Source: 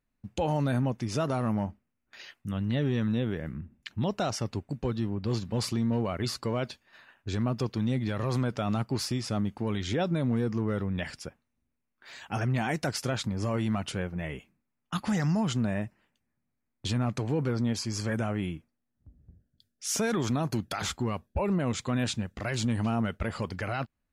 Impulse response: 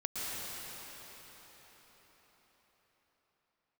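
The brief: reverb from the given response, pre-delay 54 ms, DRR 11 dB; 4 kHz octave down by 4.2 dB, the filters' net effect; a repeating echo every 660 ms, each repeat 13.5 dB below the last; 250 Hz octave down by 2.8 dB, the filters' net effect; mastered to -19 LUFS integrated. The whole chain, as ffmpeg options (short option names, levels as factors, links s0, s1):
-filter_complex "[0:a]equalizer=f=250:t=o:g=-3.5,equalizer=f=4000:t=o:g=-5.5,aecho=1:1:660|1320:0.211|0.0444,asplit=2[s0][s1];[1:a]atrim=start_sample=2205,adelay=54[s2];[s1][s2]afir=irnorm=-1:irlink=0,volume=0.158[s3];[s0][s3]amix=inputs=2:normalize=0,volume=4.47"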